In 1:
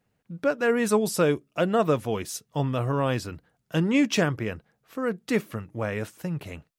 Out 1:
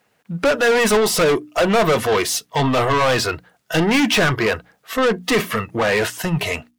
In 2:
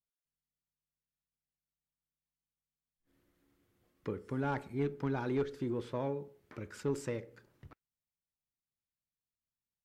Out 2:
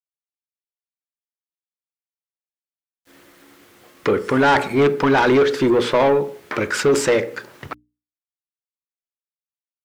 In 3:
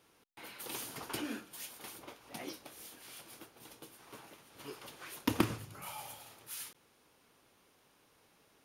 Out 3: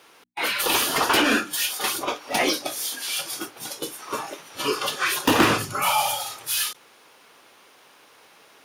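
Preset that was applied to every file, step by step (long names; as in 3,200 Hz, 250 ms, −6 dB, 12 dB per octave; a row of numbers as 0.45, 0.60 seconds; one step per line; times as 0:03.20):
dynamic equaliser 7,500 Hz, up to −4 dB, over −49 dBFS, Q 0.8
mid-hump overdrive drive 32 dB, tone 4,900 Hz, clips at −10 dBFS
bit-depth reduction 10 bits, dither none
noise reduction from a noise print of the clip's start 11 dB
mains-hum notches 60/120/180/240/300 Hz
normalise the peak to −9 dBFS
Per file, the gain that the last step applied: +1.5, +5.0, +3.5 decibels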